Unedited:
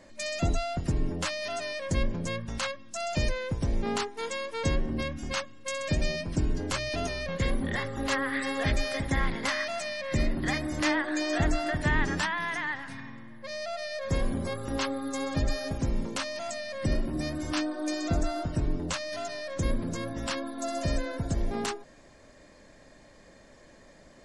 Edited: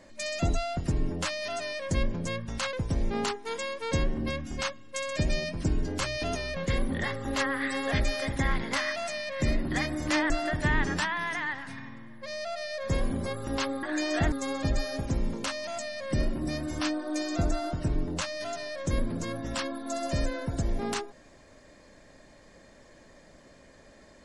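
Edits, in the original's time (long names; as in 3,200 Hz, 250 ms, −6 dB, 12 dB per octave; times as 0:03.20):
0:02.73–0:03.45: remove
0:11.02–0:11.51: move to 0:15.04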